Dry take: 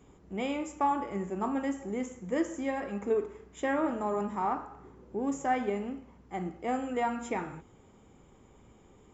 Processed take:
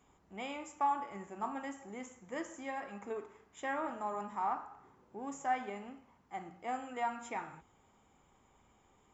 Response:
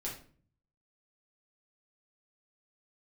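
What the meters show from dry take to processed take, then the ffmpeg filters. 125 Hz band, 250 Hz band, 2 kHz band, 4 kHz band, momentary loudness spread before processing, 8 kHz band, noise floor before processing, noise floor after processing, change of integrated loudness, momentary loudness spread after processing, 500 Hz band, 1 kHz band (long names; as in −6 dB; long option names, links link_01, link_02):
−13.5 dB, −12.5 dB, −4.5 dB, −5.0 dB, 11 LU, can't be measured, −59 dBFS, −69 dBFS, −7.0 dB, 15 LU, −11.0 dB, −3.5 dB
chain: -af "lowshelf=frequency=600:width_type=q:width=1.5:gain=-6.5,bandreject=frequency=60:width_type=h:width=6,bandreject=frequency=120:width_type=h:width=6,bandreject=frequency=180:width_type=h:width=6,volume=-5dB"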